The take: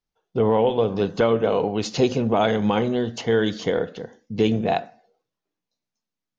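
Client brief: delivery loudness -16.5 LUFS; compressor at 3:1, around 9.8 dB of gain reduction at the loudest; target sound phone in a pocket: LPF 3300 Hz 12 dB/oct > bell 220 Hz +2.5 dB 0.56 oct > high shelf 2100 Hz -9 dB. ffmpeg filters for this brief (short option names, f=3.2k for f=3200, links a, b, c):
-af "acompressor=threshold=-28dB:ratio=3,lowpass=3.3k,equalizer=f=220:t=o:w=0.56:g=2.5,highshelf=f=2.1k:g=-9,volume=14dB"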